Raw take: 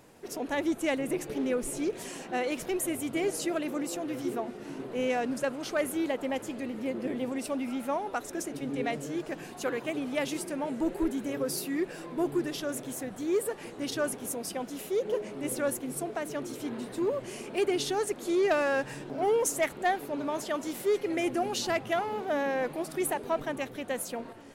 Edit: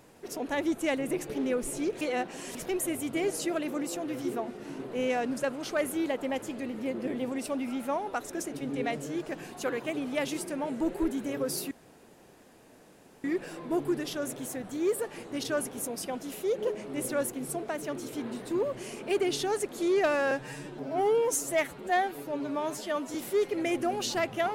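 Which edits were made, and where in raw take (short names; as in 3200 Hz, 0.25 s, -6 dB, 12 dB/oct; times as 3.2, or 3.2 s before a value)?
2.01–2.55 reverse
11.71 insert room tone 1.53 s
18.78–20.67 stretch 1.5×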